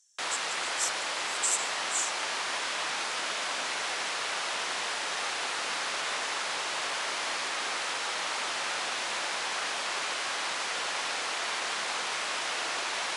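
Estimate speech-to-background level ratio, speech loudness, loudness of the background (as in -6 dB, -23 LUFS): -2.5 dB, -33.0 LUFS, -30.5 LUFS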